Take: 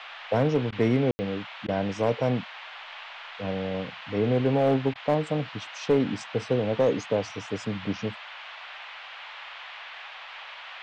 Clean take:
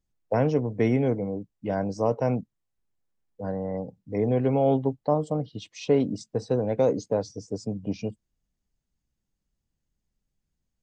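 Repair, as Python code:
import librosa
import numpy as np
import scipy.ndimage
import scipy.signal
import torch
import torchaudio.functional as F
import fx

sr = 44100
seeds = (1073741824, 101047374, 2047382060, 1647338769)

y = fx.fix_declip(x, sr, threshold_db=-14.5)
y = fx.fix_ambience(y, sr, seeds[0], print_start_s=10.08, print_end_s=10.58, start_s=1.11, end_s=1.19)
y = fx.fix_interpolate(y, sr, at_s=(0.71, 1.67, 4.94), length_ms=13.0)
y = fx.noise_reduce(y, sr, print_start_s=10.08, print_end_s=10.58, reduce_db=30.0)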